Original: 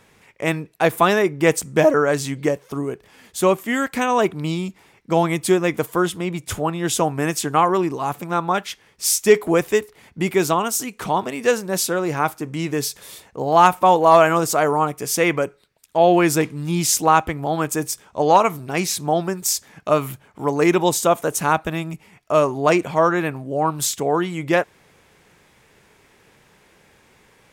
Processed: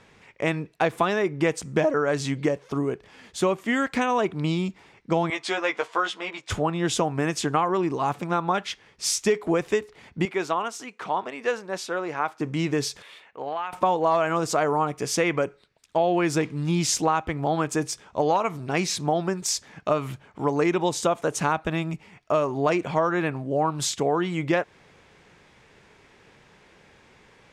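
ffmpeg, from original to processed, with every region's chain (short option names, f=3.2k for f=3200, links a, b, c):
-filter_complex "[0:a]asettb=1/sr,asplit=3[a][b][c];[a]atrim=end=5.304[d];[b]atrim=start=5.3:end=6.5,asetpts=PTS-STARTPTS,afade=t=in:d=0.004:c=qsin,afade=t=out:st=1.196:d=0.004:c=qsin,highpass=680,lowpass=5.6k,asplit=2[e][f];[f]adelay=15,volume=-3.5dB[g];[e][g]amix=inputs=2:normalize=0,atrim=end_sample=52920[h];[c]atrim=start=6.496[i];[d][h]acrossfade=d=0.004:c1=hsin:c2=qsin[j];[j][i]acrossfade=d=0.004:c1=qsin:c2=hsin,asettb=1/sr,asplit=3[k][l][m];[k]atrim=end=10.254[n];[l]atrim=start=10.25:end=12.4,asetpts=PTS-STARTPTS,afade=t=in:d=0.004:c=qsin,afade=t=out:st=2.146:d=0.004:c=qsin,highpass=f=890:p=1,highshelf=f=3k:g=-12[o];[m]atrim=start=12.396[p];[n][o]acrossfade=d=0.004:c1=hsin:c2=qsin[q];[q][p]acrossfade=d=0.004:c1=qsin:c2=hsin,asettb=1/sr,asplit=3[r][s][t];[r]atrim=end=13.024[u];[s]atrim=start=13.02:end=13.73,asetpts=PTS-STARTPTS,afade=t=in:d=0.004:c=qsin,afade=t=out:st=0.706:d=0.004:c=qsin,highpass=f=1.3k:p=1,highshelf=f=3.8k:t=q:w=1.5:g=-12,acompressor=threshold=-25dB:ratio=16:attack=3.2:release=140:knee=1:detection=peak[v];[t]atrim=start=13.726[w];[u][v]acrossfade=d=0.004:c1=hsin:c2=qsin[x];[x][w]acrossfade=d=0.004:c1=qsin:c2=hsin,lowpass=5.9k,acompressor=threshold=-19dB:ratio=5"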